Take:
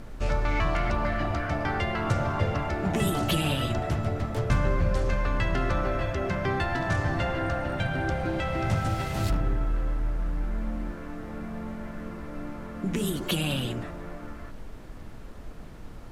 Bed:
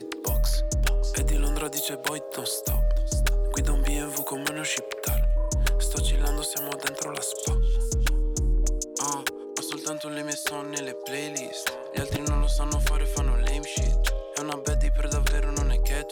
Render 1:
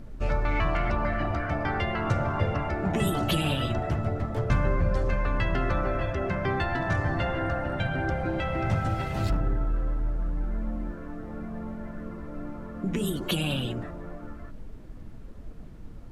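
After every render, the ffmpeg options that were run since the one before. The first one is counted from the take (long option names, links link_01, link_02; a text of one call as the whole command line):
ffmpeg -i in.wav -af "afftdn=noise_reduction=9:noise_floor=-42" out.wav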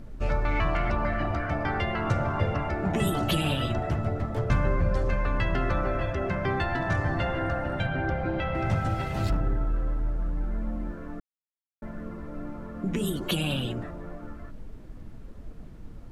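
ffmpeg -i in.wav -filter_complex "[0:a]asettb=1/sr,asplit=3[link_01][link_02][link_03];[link_01]atrim=end=7.864[link_04];[link_02]atrim=start=7.86:end=8.55,asetpts=PTS-STARTPTS,afade=type=in:duration=0.004:curve=qsin,afade=type=out:start_time=0.686:duration=0.004:curve=qsin,lowpass=4400[link_05];[link_03]atrim=start=8.546[link_06];[link_04][link_05]acrossfade=duration=0.004:curve1=hsin:curve2=qsin[link_07];[link_07][link_06]acrossfade=duration=0.004:curve1=qsin:curve2=hsin,asplit=3[link_08][link_09][link_10];[link_08]atrim=end=11.2,asetpts=PTS-STARTPTS,afade=type=out:start_time=11.196:duration=0.004:curve=hsin[link_11];[link_09]atrim=start=11.2:end=11.82,asetpts=PTS-STARTPTS,volume=0[link_12];[link_10]atrim=start=11.82,asetpts=PTS-STARTPTS,afade=type=in:duration=0.004:curve=hsin[link_13];[link_11][link_12][link_13]concat=n=3:v=0:a=1" out.wav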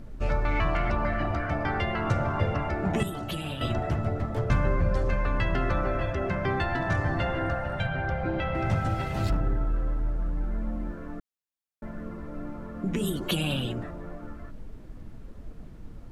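ffmpeg -i in.wav -filter_complex "[0:a]asettb=1/sr,asplit=3[link_01][link_02][link_03];[link_01]atrim=end=7.554[link_04];[link_02]atrim=start=7.55:end=8.22,asetpts=PTS-STARTPTS,afade=type=in:duration=0.004:curve=qsin,afade=type=out:start_time=0.666:duration=0.004:curve=qsin,equalizer=frequency=300:width=2.5:gain=-11.5[link_05];[link_03]atrim=start=8.216[link_06];[link_04][link_05]acrossfade=duration=0.004:curve1=hsin:curve2=qsin[link_07];[link_07][link_06]acrossfade=duration=0.004:curve1=qsin:curve2=hsin,asplit=3[link_08][link_09][link_10];[link_08]atrim=end=3.032[link_11];[link_09]atrim=start=3.028:end=3.612,asetpts=PTS-STARTPTS,volume=-7.5dB[link_12];[link_10]atrim=start=3.608[link_13];[link_11][link_12]acrossfade=duration=0.004:curve1=hsin:curve2=hsin[link_14];[link_14][link_13]acrossfade=duration=0.004:curve1=hsin:curve2=hsin" out.wav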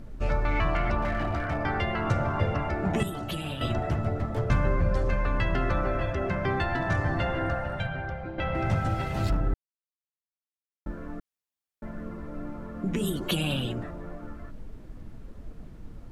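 ffmpeg -i in.wav -filter_complex "[0:a]asettb=1/sr,asplit=3[link_01][link_02][link_03];[link_01]atrim=end=1.024[link_04];[link_02]atrim=start=1.02:end=1.58,asetpts=PTS-STARTPTS,afade=type=in:duration=0.004:curve=qsin,afade=type=out:start_time=0.556:duration=0.004:curve=qsin,asoftclip=type=hard:threshold=-23dB[link_05];[link_03]atrim=start=1.576[link_06];[link_04][link_05]acrossfade=duration=0.004:curve1=hsin:curve2=qsin[link_07];[link_07][link_06]acrossfade=duration=0.004:curve1=qsin:curve2=hsin,asplit=4[link_08][link_09][link_10][link_11];[link_08]atrim=end=8.38,asetpts=PTS-STARTPTS,afade=type=out:start_time=7.59:duration=0.79:silence=0.316228[link_12];[link_09]atrim=start=8.38:end=9.54,asetpts=PTS-STARTPTS,afade=type=in:duration=0.004:curve=hsin:silence=0.316228,afade=type=out:start_time=1.156:duration=0.004:curve=hsin[link_13];[link_10]atrim=start=9.54:end=10.86,asetpts=PTS-STARTPTS,volume=0[link_14];[link_11]atrim=start=10.86,asetpts=PTS-STARTPTS,afade=type=in:duration=0.004:curve=hsin[link_15];[link_12][link_13][link_14][link_15]concat=n=4:v=0:a=1" out.wav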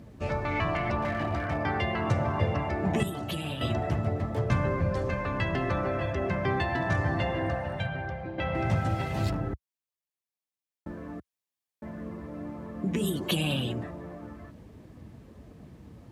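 ffmpeg -i in.wav -af "highpass=frequency=68:width=0.5412,highpass=frequency=68:width=1.3066,bandreject=frequency=1400:width=8.2" out.wav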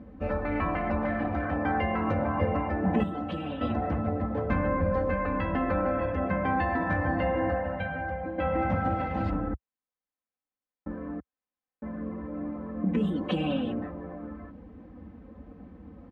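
ffmpeg -i in.wav -af "lowpass=1600,aecho=1:1:3.9:0.93" out.wav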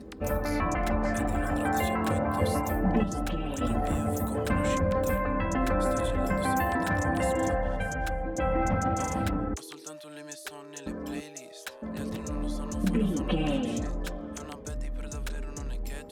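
ffmpeg -i in.wav -i bed.wav -filter_complex "[1:a]volume=-11.5dB[link_01];[0:a][link_01]amix=inputs=2:normalize=0" out.wav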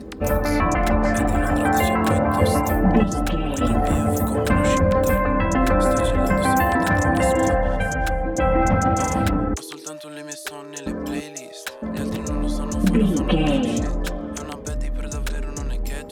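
ffmpeg -i in.wav -af "volume=8.5dB" out.wav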